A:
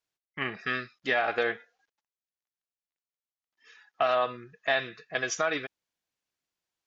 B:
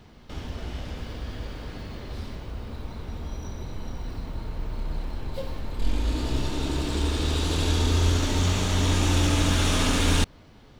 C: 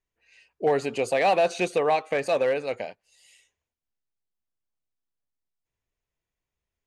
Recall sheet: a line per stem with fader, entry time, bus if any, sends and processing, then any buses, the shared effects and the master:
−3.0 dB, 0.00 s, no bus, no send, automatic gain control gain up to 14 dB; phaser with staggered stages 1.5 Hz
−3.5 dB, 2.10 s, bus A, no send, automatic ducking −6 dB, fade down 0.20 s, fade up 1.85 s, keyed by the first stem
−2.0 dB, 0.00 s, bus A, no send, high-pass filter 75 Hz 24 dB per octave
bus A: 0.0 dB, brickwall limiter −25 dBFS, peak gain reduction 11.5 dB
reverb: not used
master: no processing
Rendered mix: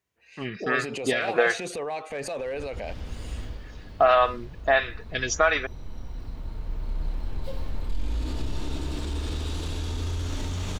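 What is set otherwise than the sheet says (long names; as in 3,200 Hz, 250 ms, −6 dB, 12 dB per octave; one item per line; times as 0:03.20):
stem C −2.0 dB → +6.0 dB
master: extra low-shelf EQ 66 Hz +8.5 dB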